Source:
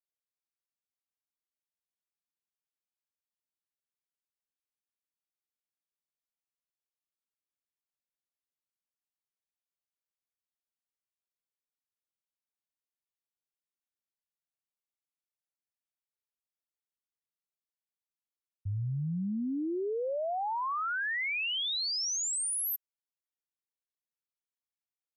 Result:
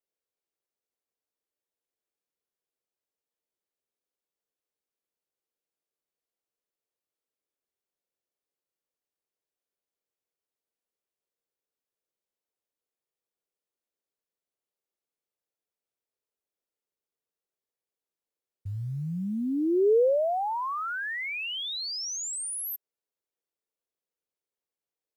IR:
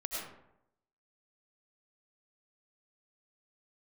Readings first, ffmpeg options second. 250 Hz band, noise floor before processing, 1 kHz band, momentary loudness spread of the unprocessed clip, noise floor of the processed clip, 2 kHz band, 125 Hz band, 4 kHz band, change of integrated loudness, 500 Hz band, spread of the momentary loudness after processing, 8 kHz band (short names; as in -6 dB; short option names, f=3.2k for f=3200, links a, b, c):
+5.0 dB, under -85 dBFS, +3.0 dB, 5 LU, under -85 dBFS, -0.5 dB, 0.0 dB, -1.0 dB, +3.0 dB, +10.5 dB, 12 LU, -1.5 dB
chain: -af "acontrast=53,acrusher=bits=9:mode=log:mix=0:aa=0.000001,equalizer=f=450:w=1.1:g=14,volume=-7.5dB"